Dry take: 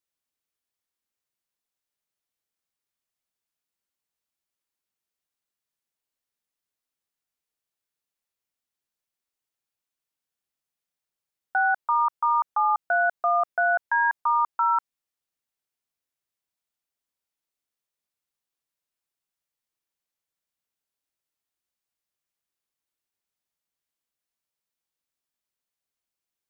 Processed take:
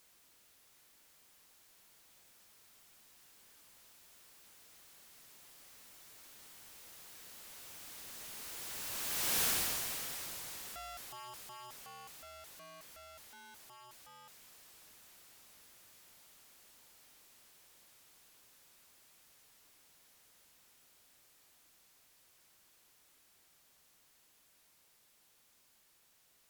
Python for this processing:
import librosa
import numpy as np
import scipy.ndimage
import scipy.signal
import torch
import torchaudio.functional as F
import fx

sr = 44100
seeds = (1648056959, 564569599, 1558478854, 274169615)

y = np.sign(x) * np.sqrt(np.mean(np.square(x)))
y = fx.doppler_pass(y, sr, speed_mps=30, closest_m=5.7, pass_at_s=9.42)
y = F.gain(torch.from_numpy(y), 3.0).numpy()